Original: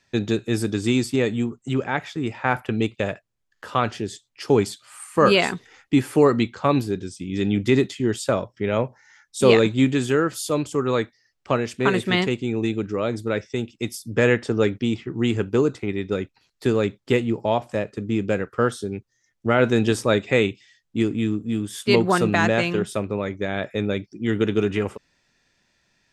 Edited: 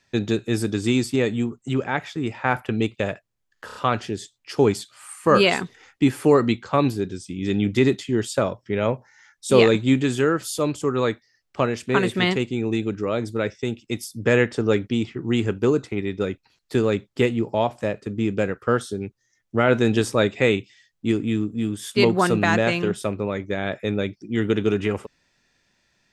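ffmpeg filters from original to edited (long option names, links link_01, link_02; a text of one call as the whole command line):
ffmpeg -i in.wav -filter_complex "[0:a]asplit=4[link_01][link_02][link_03][link_04];[link_01]atrim=end=3.692[link_05];[link_02]atrim=start=3.658:end=3.692[link_06];[link_03]atrim=start=3.658:end=3.692[link_07];[link_04]atrim=start=3.658[link_08];[link_05][link_06]acrossfade=duration=0.004:curve1=hsin:curve2=hsin[link_09];[link_09][link_07]acrossfade=duration=0.004:curve1=hsin:curve2=hsin[link_10];[link_10][link_08]acrossfade=duration=0.004:curve1=hsin:curve2=hsin" out.wav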